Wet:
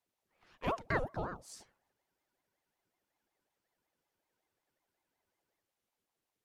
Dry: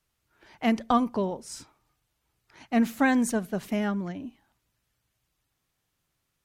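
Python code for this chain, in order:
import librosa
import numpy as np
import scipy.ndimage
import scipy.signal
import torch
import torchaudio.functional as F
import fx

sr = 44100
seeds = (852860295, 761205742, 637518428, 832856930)

y = fx.spec_freeze(x, sr, seeds[0], at_s=1.95, hold_s=3.67)
y = fx.ring_lfo(y, sr, carrier_hz=570.0, swing_pct=60, hz=5.4)
y = y * 10.0 ** (-8.0 / 20.0)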